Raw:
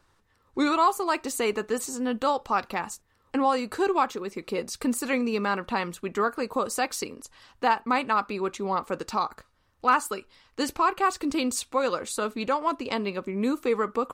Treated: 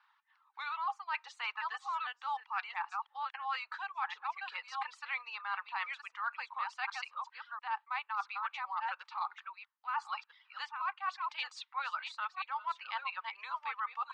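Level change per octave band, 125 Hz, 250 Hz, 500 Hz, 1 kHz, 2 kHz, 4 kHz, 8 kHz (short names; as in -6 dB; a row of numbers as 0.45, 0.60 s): under -40 dB, under -40 dB, -36.0 dB, -10.0 dB, -6.0 dB, -8.5 dB, under -25 dB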